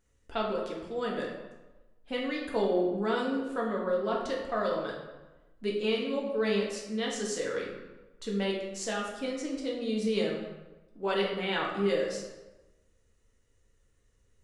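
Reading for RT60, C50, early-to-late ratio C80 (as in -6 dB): 1.1 s, 3.5 dB, 5.5 dB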